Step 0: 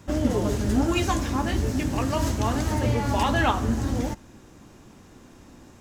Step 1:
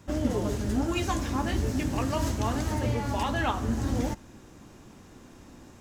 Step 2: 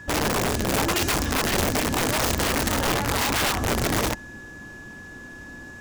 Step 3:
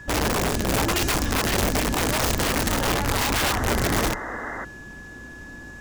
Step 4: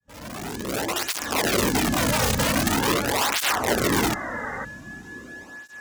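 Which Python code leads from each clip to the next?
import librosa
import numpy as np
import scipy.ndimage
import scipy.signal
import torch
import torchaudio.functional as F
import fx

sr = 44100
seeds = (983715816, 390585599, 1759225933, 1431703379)

y1 = fx.rider(x, sr, range_db=10, speed_s=0.5)
y1 = y1 * 10.0 ** (-4.0 / 20.0)
y2 = y1 + 10.0 ** (-46.0 / 20.0) * np.sin(2.0 * np.pi * 1700.0 * np.arange(len(y1)) / sr)
y2 = (np.mod(10.0 ** (23.0 / 20.0) * y2 + 1.0, 2.0) - 1.0) / 10.0 ** (23.0 / 20.0)
y2 = y2 * 10.0 ** (5.5 / 20.0)
y3 = fx.octave_divider(y2, sr, octaves=2, level_db=-2.0)
y3 = fx.spec_paint(y3, sr, seeds[0], shape='noise', start_s=3.42, length_s=1.23, low_hz=230.0, high_hz=2100.0, level_db=-33.0)
y4 = fx.fade_in_head(y3, sr, length_s=1.48)
y4 = fx.flanger_cancel(y4, sr, hz=0.44, depth_ms=3.1)
y4 = y4 * 10.0 ** (4.0 / 20.0)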